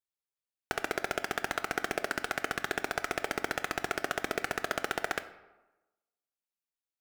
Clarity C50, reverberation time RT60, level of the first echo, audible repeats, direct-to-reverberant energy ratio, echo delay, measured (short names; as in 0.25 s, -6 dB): 13.5 dB, 1.1 s, none, none, 11.0 dB, none